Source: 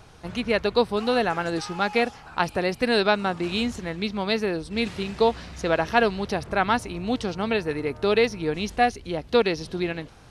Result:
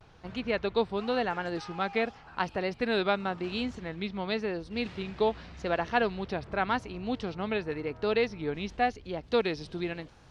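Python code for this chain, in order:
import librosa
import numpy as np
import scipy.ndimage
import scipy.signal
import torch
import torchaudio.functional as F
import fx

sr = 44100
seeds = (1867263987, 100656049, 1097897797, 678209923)

y = fx.lowpass(x, sr, hz=fx.steps((0.0, 4300.0), (9.24, 7200.0)), slope=12)
y = fx.vibrato(y, sr, rate_hz=0.91, depth_cents=76.0)
y = y * 10.0 ** (-6.5 / 20.0)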